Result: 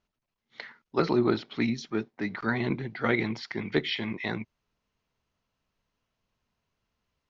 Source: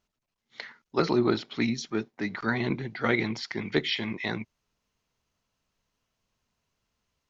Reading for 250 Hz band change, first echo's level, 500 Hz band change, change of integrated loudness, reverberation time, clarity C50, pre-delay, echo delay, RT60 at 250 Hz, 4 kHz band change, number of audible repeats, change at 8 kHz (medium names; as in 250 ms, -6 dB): 0.0 dB, no echo, 0.0 dB, -0.5 dB, no reverb, no reverb, no reverb, no echo, no reverb, -3.0 dB, no echo, no reading